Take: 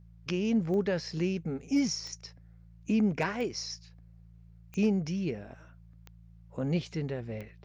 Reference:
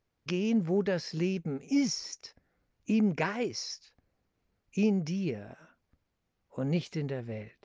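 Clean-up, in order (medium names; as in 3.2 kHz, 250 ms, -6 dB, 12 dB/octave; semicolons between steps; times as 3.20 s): clip repair -19 dBFS; de-click; de-hum 56.2 Hz, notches 3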